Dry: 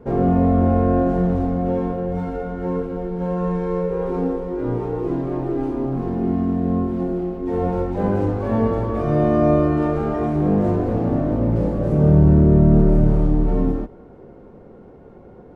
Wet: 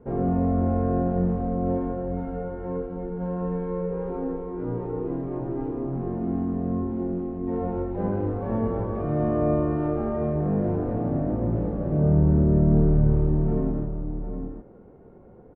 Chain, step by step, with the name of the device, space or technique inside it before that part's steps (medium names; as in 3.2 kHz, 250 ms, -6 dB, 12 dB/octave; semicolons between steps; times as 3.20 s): shout across a valley (distance through air 480 m; echo from a far wall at 130 m, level -7 dB); trim -6 dB